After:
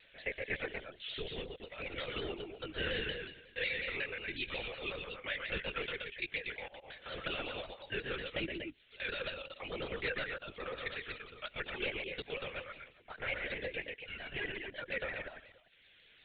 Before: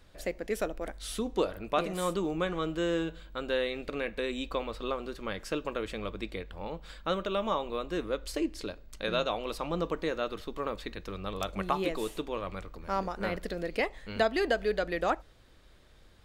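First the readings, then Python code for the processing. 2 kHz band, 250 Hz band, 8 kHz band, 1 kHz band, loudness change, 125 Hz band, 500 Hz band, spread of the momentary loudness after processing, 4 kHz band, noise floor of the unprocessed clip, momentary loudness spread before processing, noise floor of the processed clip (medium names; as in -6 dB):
+0.5 dB, -13.5 dB, under -30 dB, -13.5 dB, -6.5 dB, -8.0 dB, -11.0 dB, 8 LU, -1.5 dB, -57 dBFS, 8 LU, -64 dBFS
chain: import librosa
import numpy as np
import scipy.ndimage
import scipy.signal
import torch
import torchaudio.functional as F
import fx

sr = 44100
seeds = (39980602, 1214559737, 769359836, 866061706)

p1 = scipy.signal.sosfilt(scipy.signal.butter(2, 1500.0, 'highpass', fs=sr, output='sos'), x)
p2 = fx.dereverb_blind(p1, sr, rt60_s=1.4)
p3 = fx.tilt_eq(p2, sr, slope=-4.0)
p4 = fx.over_compress(p3, sr, threshold_db=-44.0, ratio=-1.0)
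p5 = fx.dmg_noise_colour(p4, sr, seeds[0], colour='blue', level_db=-60.0)
p6 = p5 + 10.0 ** (-17.5 / 20.0) * np.pad(p5, (int(292 * sr / 1000.0), 0))[:len(p5)]
p7 = fx.step_gate(p6, sr, bpm=63, pattern='xxx.xx.xxx.', floor_db=-60.0, edge_ms=4.5)
p8 = fx.fixed_phaser(p7, sr, hz=2500.0, stages=4)
p9 = p8 + fx.echo_multitap(p8, sr, ms=(128, 240), db=(-4.5, -6.0), dry=0)
p10 = fx.lpc_vocoder(p9, sr, seeds[1], excitation='whisper', order=16)
p11 = fx.vibrato_shape(p10, sr, shape='saw_down', rate_hz=5.5, depth_cents=100.0)
y = p11 * librosa.db_to_amplitude(9.5)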